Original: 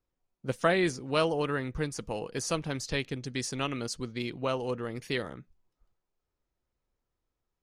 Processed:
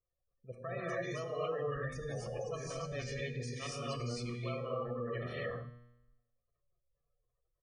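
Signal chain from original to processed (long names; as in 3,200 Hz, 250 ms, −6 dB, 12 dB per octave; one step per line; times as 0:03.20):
reversed playback
downward compressor 6 to 1, threshold −35 dBFS, peak gain reduction 15 dB
reversed playback
low-shelf EQ 120 Hz −5 dB
comb filter 1.7 ms, depth 69%
on a send: single-tap delay 100 ms −16.5 dB
on the sum: reverb whose tail is shaped and stops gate 310 ms rising, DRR −6 dB
tape wow and flutter 28 cents
gate on every frequency bin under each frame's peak −20 dB strong
high-shelf EQ 6,100 Hz −11 dB
tuned comb filter 120 Hz, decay 0.96 s, harmonics all, mix 70%
level +2 dB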